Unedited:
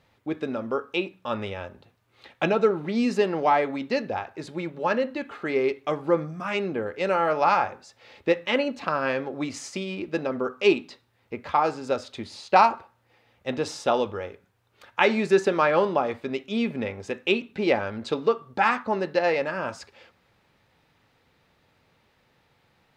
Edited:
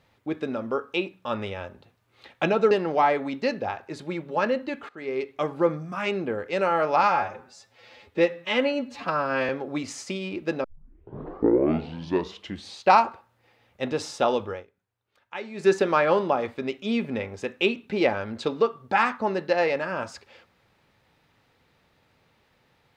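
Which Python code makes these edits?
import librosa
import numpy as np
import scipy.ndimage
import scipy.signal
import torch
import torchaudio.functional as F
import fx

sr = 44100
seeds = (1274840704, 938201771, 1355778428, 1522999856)

y = fx.edit(x, sr, fx.cut(start_s=2.71, length_s=0.48),
    fx.fade_in_from(start_s=5.37, length_s=0.55, floor_db=-17.5),
    fx.stretch_span(start_s=7.51, length_s=1.64, factor=1.5),
    fx.tape_start(start_s=10.3, length_s=2.2),
    fx.fade_down_up(start_s=14.18, length_s=1.16, db=-15.0, fade_s=0.14), tone=tone)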